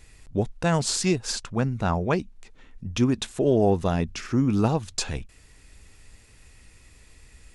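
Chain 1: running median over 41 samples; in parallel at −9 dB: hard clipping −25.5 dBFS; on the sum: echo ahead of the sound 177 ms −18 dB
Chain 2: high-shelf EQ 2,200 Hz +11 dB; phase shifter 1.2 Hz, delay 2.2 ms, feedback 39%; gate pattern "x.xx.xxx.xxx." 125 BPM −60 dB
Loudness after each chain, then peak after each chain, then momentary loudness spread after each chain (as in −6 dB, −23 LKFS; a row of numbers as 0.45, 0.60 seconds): −25.0, −23.0 LKFS; −9.5, −3.5 dBFS; 13, 12 LU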